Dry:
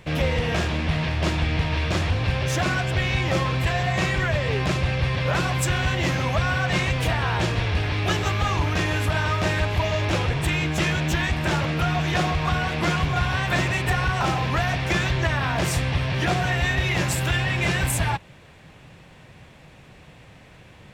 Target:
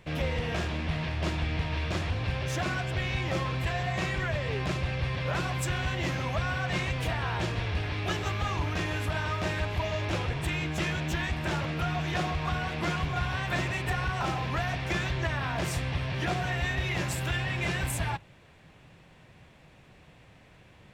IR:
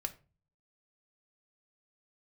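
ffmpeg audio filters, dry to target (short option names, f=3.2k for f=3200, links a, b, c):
-filter_complex "[0:a]asplit=2[a][b];[1:a]atrim=start_sample=2205,lowpass=5.5k[c];[b][c]afir=irnorm=-1:irlink=0,volume=-14.5dB[d];[a][d]amix=inputs=2:normalize=0,volume=-8.5dB"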